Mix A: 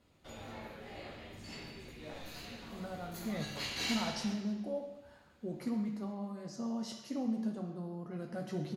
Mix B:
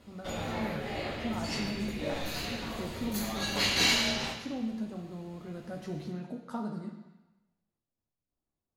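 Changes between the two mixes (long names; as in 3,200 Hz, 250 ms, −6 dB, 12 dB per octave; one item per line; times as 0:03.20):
speech: entry −2.65 s
background +11.5 dB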